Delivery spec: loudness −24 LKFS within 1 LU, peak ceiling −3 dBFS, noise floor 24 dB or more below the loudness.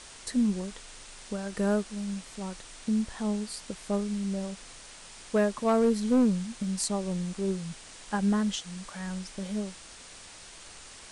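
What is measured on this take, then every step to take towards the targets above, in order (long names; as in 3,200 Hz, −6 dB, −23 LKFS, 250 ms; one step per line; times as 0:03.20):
share of clipped samples 0.3%; peaks flattened at −17.5 dBFS; background noise floor −48 dBFS; target noise floor −55 dBFS; integrated loudness −30.5 LKFS; sample peak −17.5 dBFS; target loudness −24.0 LKFS
→ clipped peaks rebuilt −17.5 dBFS
noise reduction from a noise print 7 dB
level +6.5 dB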